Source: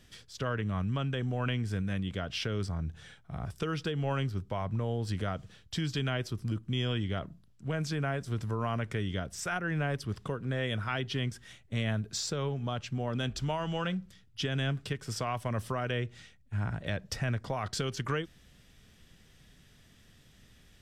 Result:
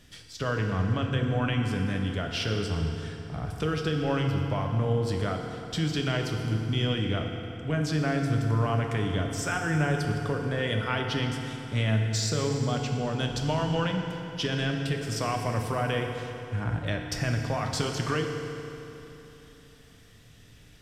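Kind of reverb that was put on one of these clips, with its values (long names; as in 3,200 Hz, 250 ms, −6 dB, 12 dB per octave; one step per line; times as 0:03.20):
feedback delay network reverb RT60 3.3 s, high-frequency decay 0.75×, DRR 2 dB
level +3 dB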